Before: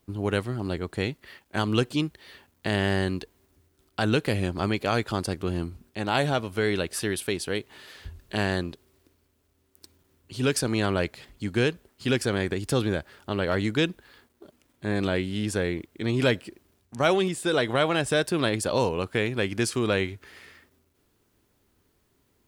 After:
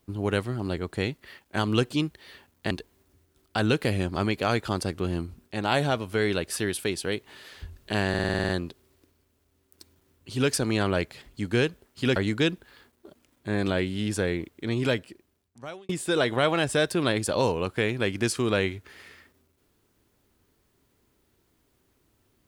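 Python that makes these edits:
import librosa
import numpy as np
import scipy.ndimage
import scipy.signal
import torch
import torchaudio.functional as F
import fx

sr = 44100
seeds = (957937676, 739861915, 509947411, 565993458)

y = fx.edit(x, sr, fx.cut(start_s=2.71, length_s=0.43),
    fx.stutter(start_s=8.52, slice_s=0.05, count=9),
    fx.cut(start_s=12.19, length_s=1.34),
    fx.fade_out_span(start_s=15.89, length_s=1.37), tone=tone)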